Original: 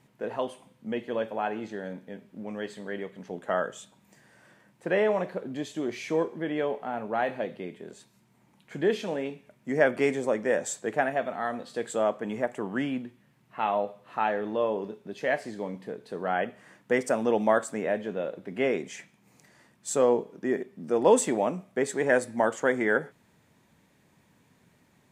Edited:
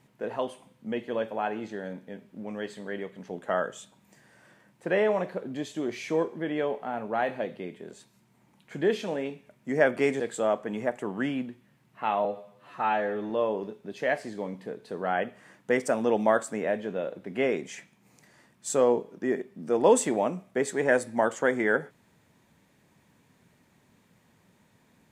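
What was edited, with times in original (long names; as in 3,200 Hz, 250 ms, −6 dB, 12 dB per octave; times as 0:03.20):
0:10.20–0:11.76: remove
0:13.81–0:14.51: time-stretch 1.5×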